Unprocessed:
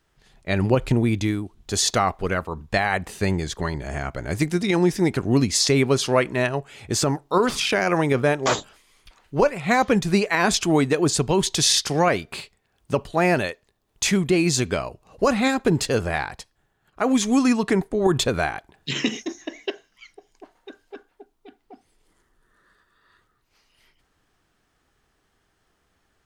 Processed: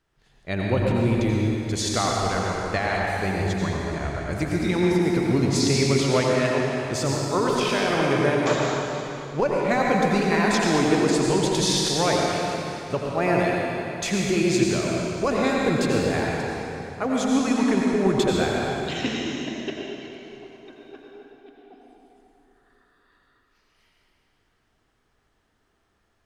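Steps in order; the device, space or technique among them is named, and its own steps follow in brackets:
swimming-pool hall (convolution reverb RT60 3.1 s, pre-delay 77 ms, DRR −2.5 dB; high-shelf EQ 5,800 Hz −5.5 dB)
level −5 dB

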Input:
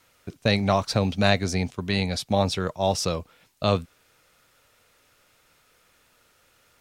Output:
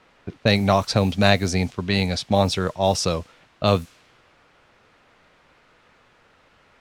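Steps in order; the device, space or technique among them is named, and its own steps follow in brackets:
cassette deck with a dynamic noise filter (white noise bed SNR 26 dB; low-pass that shuts in the quiet parts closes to 2,000 Hz, open at −18.5 dBFS)
level +3.5 dB

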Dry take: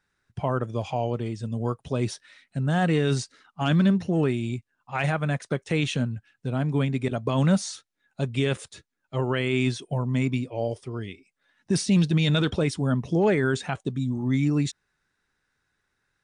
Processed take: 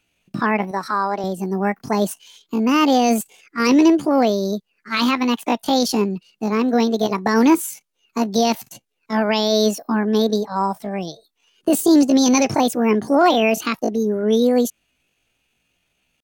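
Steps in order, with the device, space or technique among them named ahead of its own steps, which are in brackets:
chipmunk voice (pitch shifter +9 semitones)
0:00.71–0:01.24: bass and treble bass −14 dB, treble −4 dB
level +7 dB

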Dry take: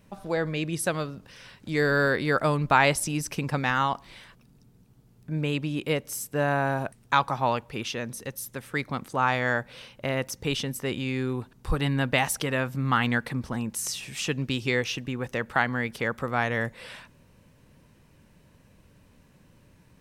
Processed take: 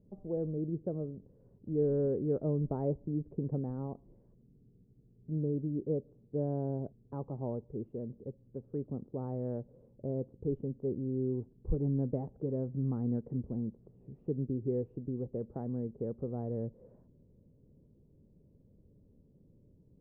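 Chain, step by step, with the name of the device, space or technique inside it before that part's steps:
under water (low-pass filter 490 Hz 24 dB per octave; parametric band 410 Hz +4.5 dB 0.28 octaves)
level −5 dB

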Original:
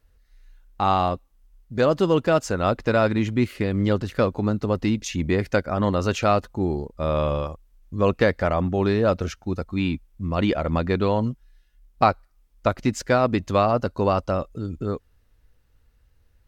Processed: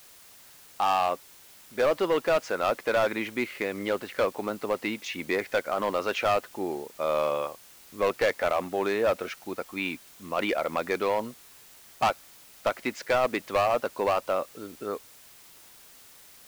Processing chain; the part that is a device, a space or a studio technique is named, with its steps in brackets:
drive-through speaker (band-pass filter 460–3,700 Hz; parametric band 2,200 Hz +5.5 dB 0.3 octaves; hard clipping −18.5 dBFS, distortion −10 dB; white noise bed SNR 23 dB)

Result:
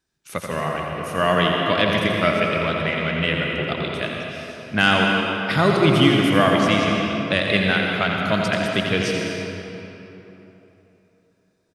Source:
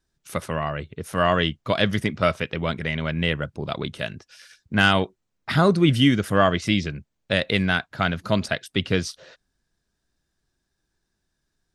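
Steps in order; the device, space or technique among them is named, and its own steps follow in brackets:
PA in a hall (high-pass filter 130 Hz 6 dB per octave; parametric band 2,400 Hz +4 dB 0.41 octaves; single-tap delay 85 ms −7 dB; convolution reverb RT60 3.4 s, pre-delay 111 ms, DRR 0.5 dB)

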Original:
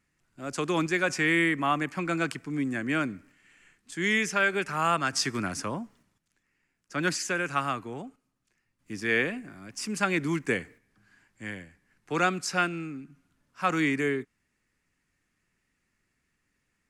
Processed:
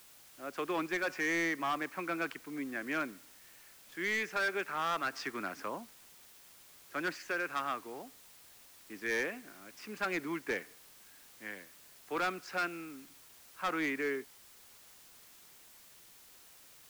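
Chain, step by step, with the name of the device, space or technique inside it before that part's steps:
aircraft radio (band-pass filter 370–2,600 Hz; hard clipping −24 dBFS, distortion −11 dB; white noise bed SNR 19 dB)
level −4 dB

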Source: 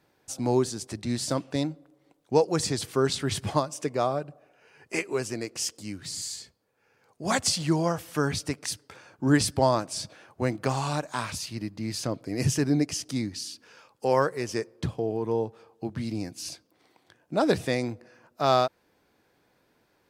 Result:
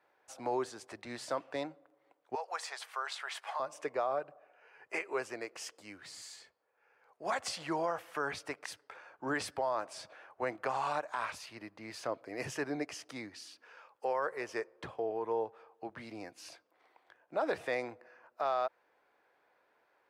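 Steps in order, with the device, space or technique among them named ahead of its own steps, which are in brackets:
DJ mixer with the lows and highs turned down (three-way crossover with the lows and the highs turned down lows −23 dB, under 470 Hz, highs −16 dB, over 2,500 Hz; brickwall limiter −23.5 dBFS, peak gain reduction 11 dB)
0:02.35–0:03.60: high-pass filter 700 Hz 24 dB per octave

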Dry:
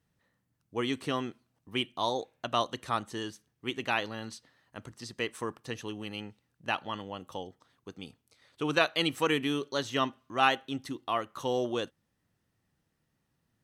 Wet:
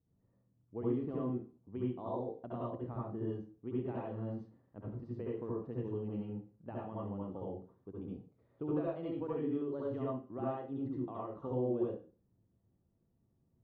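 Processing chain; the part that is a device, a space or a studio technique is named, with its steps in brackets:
television next door (downward compressor 3 to 1, threshold −33 dBFS, peak gain reduction 11 dB; low-pass filter 490 Hz 12 dB per octave; convolution reverb RT60 0.35 s, pre-delay 63 ms, DRR −5.5 dB)
0:02.70–0:03.28: low-pass filter 2,700 Hz 6 dB per octave
level −3 dB

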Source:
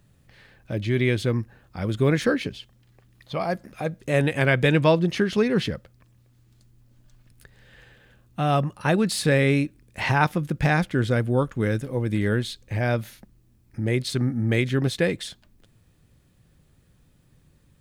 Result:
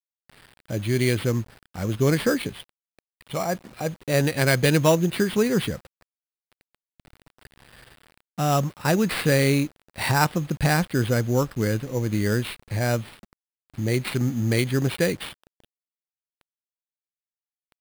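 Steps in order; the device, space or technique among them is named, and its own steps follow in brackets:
early 8-bit sampler (sample-rate reduction 6,500 Hz, jitter 0%; bit reduction 8 bits)

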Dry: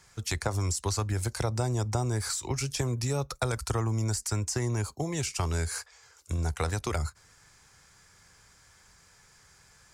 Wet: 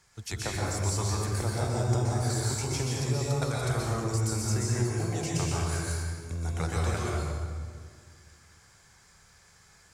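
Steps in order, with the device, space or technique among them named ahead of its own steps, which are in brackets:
stairwell (convolution reverb RT60 1.9 s, pre-delay 118 ms, DRR −5 dB)
level −5.5 dB

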